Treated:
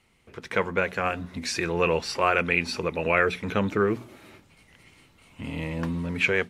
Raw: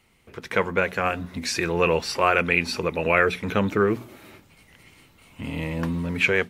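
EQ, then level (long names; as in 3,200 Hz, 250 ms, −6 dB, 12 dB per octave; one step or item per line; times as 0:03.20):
low-pass filter 11,000 Hz 12 dB per octave
−2.5 dB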